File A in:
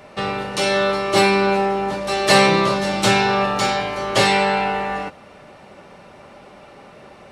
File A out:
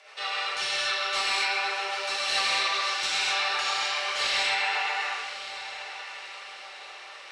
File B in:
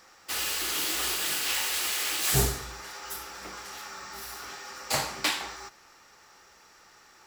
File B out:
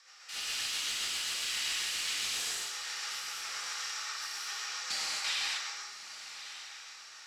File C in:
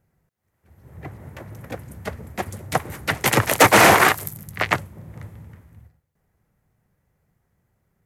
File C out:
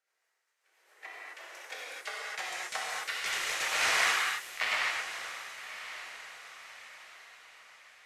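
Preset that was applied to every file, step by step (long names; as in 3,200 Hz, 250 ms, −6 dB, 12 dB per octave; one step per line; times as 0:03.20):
high-pass filter 380 Hz 24 dB per octave
first difference
downward compressor 2 to 1, threshold −41 dBFS
rotating-speaker cabinet horn 7.5 Hz
mid-hump overdrive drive 17 dB, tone 4,400 Hz, clips at −15 dBFS
high-frequency loss of the air 82 metres
feedback delay with all-pass diffusion 1,132 ms, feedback 43%, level −12 dB
reverb whose tail is shaped and stops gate 290 ms flat, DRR −6.5 dB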